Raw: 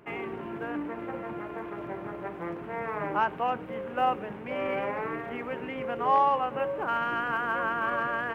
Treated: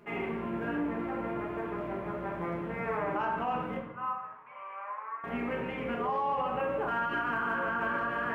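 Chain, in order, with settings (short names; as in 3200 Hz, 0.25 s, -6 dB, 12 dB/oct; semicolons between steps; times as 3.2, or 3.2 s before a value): 3.77–5.24 ladder band-pass 1200 Hz, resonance 70%; shoebox room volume 220 m³, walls mixed, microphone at 1.3 m; limiter -19.5 dBFS, peak gain reduction 11 dB; gain -3.5 dB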